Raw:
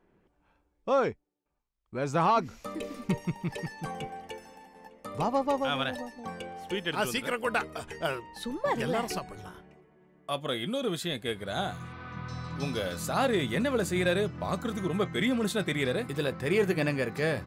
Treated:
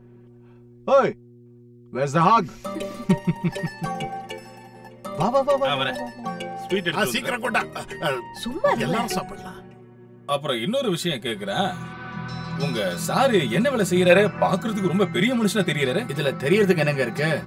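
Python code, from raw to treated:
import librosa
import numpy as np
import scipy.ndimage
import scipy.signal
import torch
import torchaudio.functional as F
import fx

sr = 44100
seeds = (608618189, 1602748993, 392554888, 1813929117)

y = fx.spec_box(x, sr, start_s=14.1, length_s=0.37, low_hz=440.0, high_hz=2700.0, gain_db=9)
y = fx.dmg_buzz(y, sr, base_hz=120.0, harmonics=4, level_db=-53.0, tilt_db=-6, odd_only=False)
y = y + 0.84 * np.pad(y, (int(5.3 * sr / 1000.0), 0))[:len(y)]
y = F.gain(torch.from_numpy(y), 5.0).numpy()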